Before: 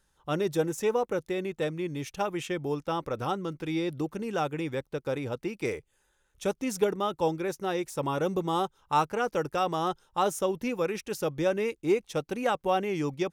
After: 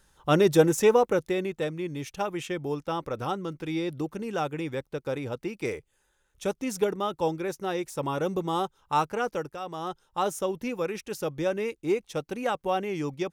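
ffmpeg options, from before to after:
-af "volume=7.08,afade=t=out:st=0.72:d=0.93:silence=0.398107,afade=t=out:st=9.27:d=0.31:silence=0.316228,afade=t=in:st=9.58:d=0.62:silence=0.354813"

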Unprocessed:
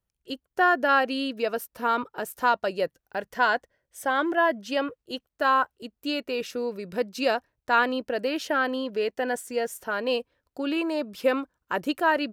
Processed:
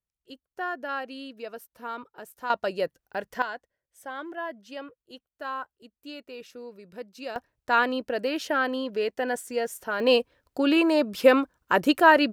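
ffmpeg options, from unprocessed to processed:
-af "asetnsamples=n=441:p=0,asendcmd='2.5 volume volume -1dB;3.42 volume volume -12dB;7.36 volume volume -0.5dB;10 volume volume 6dB',volume=0.282"

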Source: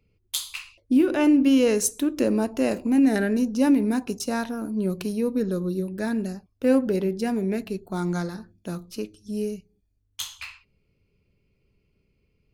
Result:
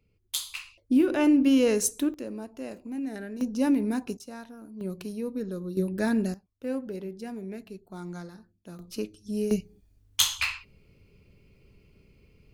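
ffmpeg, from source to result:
-af "asetnsamples=n=441:p=0,asendcmd='2.14 volume volume -14.5dB;3.41 volume volume -4.5dB;4.17 volume volume -15dB;4.81 volume volume -8dB;5.77 volume volume 1dB;6.34 volume volume -12dB;8.79 volume volume -1dB;9.51 volume volume 10dB',volume=0.75"

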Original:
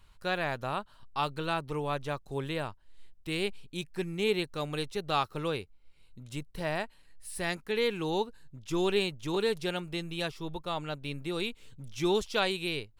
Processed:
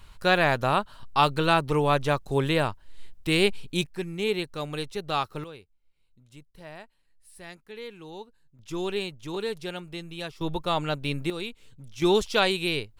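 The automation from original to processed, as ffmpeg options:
-af "asetnsamples=n=441:p=0,asendcmd='3.86 volume volume 1.5dB;5.44 volume volume -11dB;8.59 volume volume -2dB;10.41 volume volume 8dB;11.3 volume volume -1dB;12.02 volume volume 6dB',volume=3.16"

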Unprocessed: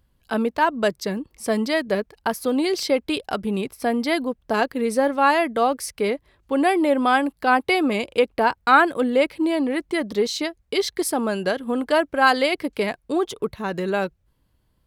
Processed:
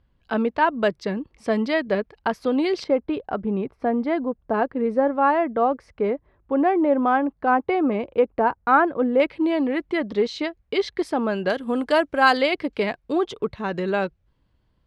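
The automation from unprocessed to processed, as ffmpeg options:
-af "asetnsamples=n=441:p=0,asendcmd='2.84 lowpass f 1300;9.2 lowpass f 3100;11.5 lowpass f 7700;12.37 lowpass f 4300',lowpass=3300"

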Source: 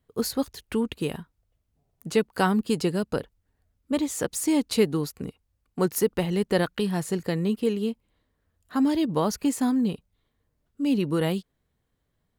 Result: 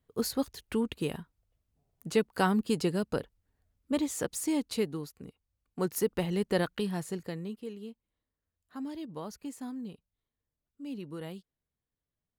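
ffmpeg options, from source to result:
-af "volume=1.58,afade=t=out:st=4.05:d=1.12:silence=0.354813,afade=t=in:st=5.17:d=1:silence=0.398107,afade=t=out:st=6.71:d=0.89:silence=0.281838"

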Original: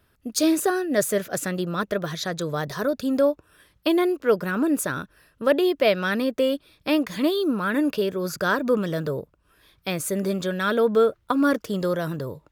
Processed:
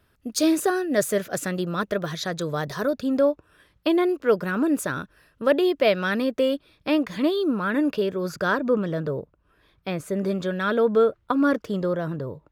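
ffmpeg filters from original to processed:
-af "asetnsamples=n=441:p=0,asendcmd='2.96 lowpass f 3700;4.09 lowpass f 6400;6.55 lowpass f 3600;8.58 lowpass f 1700;10.21 lowpass f 2800;11.8 lowpass f 1400',lowpass=f=9500:p=1"

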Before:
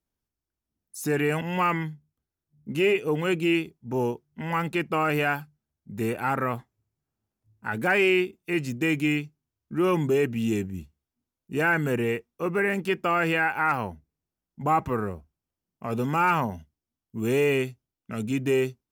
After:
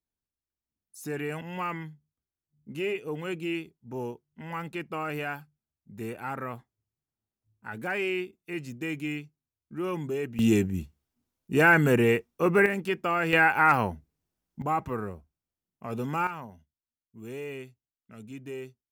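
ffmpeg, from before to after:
-af "asetnsamples=n=441:p=0,asendcmd='10.39 volume volume 4dB;12.66 volume volume -3dB;13.33 volume volume 3.5dB;14.62 volume volume -5dB;16.27 volume volume -15dB',volume=0.376"

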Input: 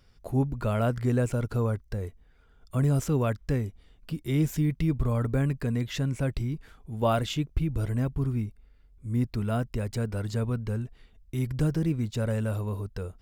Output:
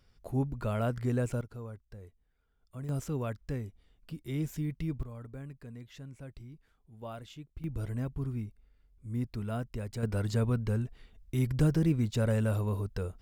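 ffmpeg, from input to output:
-af "asetnsamples=n=441:p=0,asendcmd='1.41 volume volume -16dB;2.89 volume volume -8.5dB;5.03 volume volume -18dB;7.64 volume volume -7dB;10.03 volume volume 0dB',volume=0.562"

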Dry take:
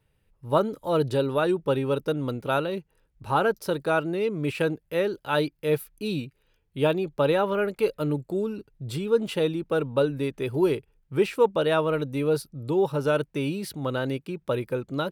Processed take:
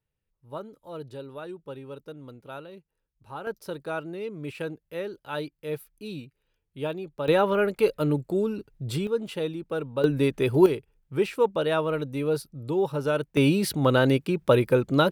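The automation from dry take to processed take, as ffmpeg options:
-af "asetnsamples=n=441:p=0,asendcmd='3.47 volume volume -8dB;7.28 volume volume 2dB;9.07 volume volume -5dB;10.04 volume volume 5dB;10.66 volume volume -2dB;13.37 volume volume 7.5dB',volume=0.178"

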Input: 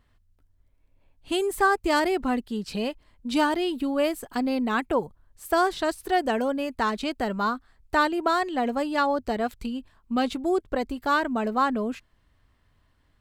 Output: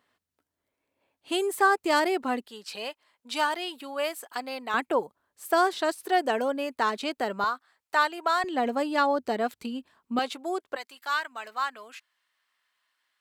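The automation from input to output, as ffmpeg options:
-af "asetnsamples=n=441:p=0,asendcmd='2.49 highpass f 720;4.74 highpass f 330;7.44 highpass f 710;8.44 highpass f 240;10.19 highpass f 570;10.76 highpass f 1400',highpass=330"

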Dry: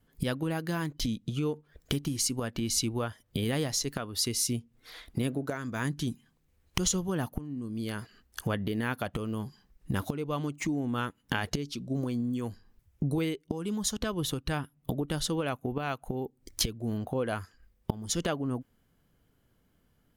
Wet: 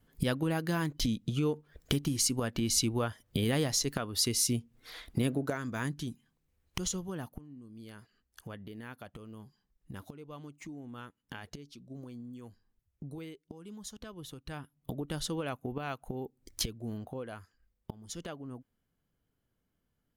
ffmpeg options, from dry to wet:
-af "volume=3.16,afade=t=out:st=5.48:d=0.61:silence=0.446684,afade=t=out:st=6.97:d=0.68:silence=0.421697,afade=t=in:st=14.33:d=0.81:silence=0.334965,afade=t=out:st=16.71:d=0.6:silence=0.446684"

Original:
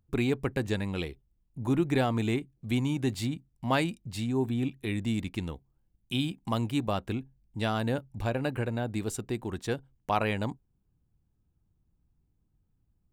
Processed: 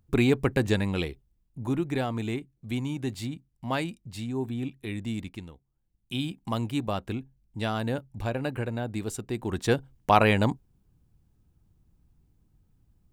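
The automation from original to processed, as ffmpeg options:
-af "volume=15.8,afade=t=out:st=0.71:d=1.14:silence=0.398107,afade=t=out:st=5.22:d=0.3:silence=0.398107,afade=t=in:st=5.52:d=0.82:silence=0.298538,afade=t=in:st=9.3:d=0.45:silence=0.398107"

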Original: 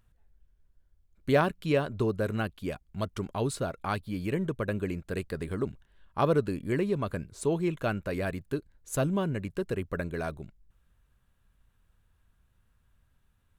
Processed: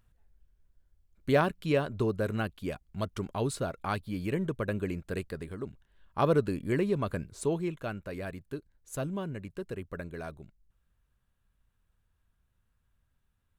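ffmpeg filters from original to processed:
-af "volume=2.24,afade=t=out:st=5.14:d=0.44:silence=0.446684,afade=t=in:st=5.58:d=0.74:silence=0.398107,afade=t=out:st=7.34:d=0.45:silence=0.473151"

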